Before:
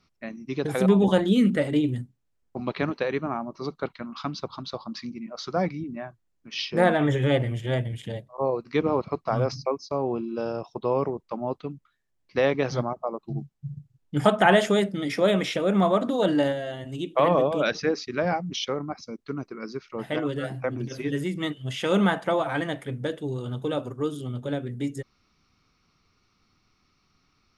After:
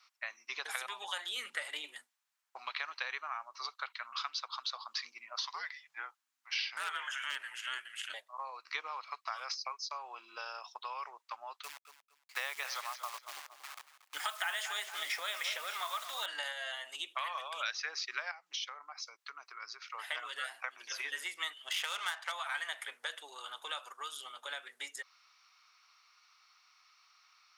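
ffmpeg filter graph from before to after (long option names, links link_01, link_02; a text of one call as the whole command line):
ffmpeg -i in.wav -filter_complex "[0:a]asettb=1/sr,asplit=3[link_01][link_02][link_03];[link_01]atrim=end=5.384[link_04];[link_02]atrim=start=5.38:end=8.14,asetpts=PTS-STARTPTS,afade=type=in:duration=0.004:curve=qsin,afade=type=out:start_time=2.756:duration=0.004:curve=qsin,asoftclip=type=hard:threshold=-13dB,afreqshift=-270[link_05];[link_03]atrim=start=8.136[link_06];[link_04][link_05]acrossfade=duration=0.004:curve1=hsin:curve2=qsin[link_07];[link_07][link_06]acrossfade=duration=0.004:curve1=qsin:curve2=hsin,asettb=1/sr,asplit=3[link_08][link_09][link_10];[link_08]atrim=end=11.634[link_11];[link_09]atrim=start=11.63:end=16.26,asetpts=PTS-STARTPTS,afade=type=in:duration=0.004:curve=qsin,afade=type=out:start_time=4.626:duration=0.004:curve=qsin,acrusher=bits=8:dc=4:mix=0:aa=0.000001,aecho=1:1:232|464|696:0.178|0.0445|0.0111,atrim=end_sample=204183[link_12];[link_10]atrim=start=16.256[link_13];[link_11][link_12]acrossfade=duration=0.004:curve1=hsin:curve2=qsin[link_14];[link_14][link_13]acrossfade=duration=0.004:curve1=qsin:curve2=hsin,asettb=1/sr,asplit=3[link_15][link_16][link_17];[link_15]atrim=end=18.314[link_18];[link_16]atrim=start=18.31:end=19.82,asetpts=PTS-STARTPTS,afade=type=in:duration=0.004:curve=qsin,afade=type=out:start_time=1.506:duration=0.004:curve=qsin,highpass=frequency=280:poles=1,acompressor=threshold=-42dB:ratio=3:attack=3.2:release=140:knee=1:detection=peak[link_19];[link_17]atrim=start=19.816[link_20];[link_18][link_19]acrossfade=duration=0.004:curve1=hsin:curve2=qsin[link_21];[link_21][link_20]acrossfade=duration=0.004:curve1=qsin:curve2=hsin,asettb=1/sr,asplit=3[link_22][link_23][link_24];[link_22]atrim=end=21.674[link_25];[link_23]atrim=start=21.67:end=22.32,asetpts=PTS-STARTPTS,afade=type=in:duration=0.004:curve=qsin,afade=type=out:start_time=0.646:duration=0.004:curve=qsin,adynamicsmooth=sensitivity=5.5:basefreq=3400,highshelf=frequency=4000:gain=11[link_26];[link_24]atrim=start=22.316[link_27];[link_25][link_26]acrossfade=duration=0.004:curve1=hsin:curve2=qsin[link_28];[link_28][link_27]acrossfade=duration=0.004:curve1=qsin:curve2=hsin,acompressor=threshold=-30dB:ratio=1.5,highpass=frequency=960:width=0.5412,highpass=frequency=960:width=1.3066,acrossover=split=1400|5600[link_29][link_30][link_31];[link_29]acompressor=threshold=-52dB:ratio=4[link_32];[link_30]acompressor=threshold=-42dB:ratio=4[link_33];[link_31]acompressor=threshold=-51dB:ratio=4[link_34];[link_32][link_33][link_34]amix=inputs=3:normalize=0,volume=5dB" out.wav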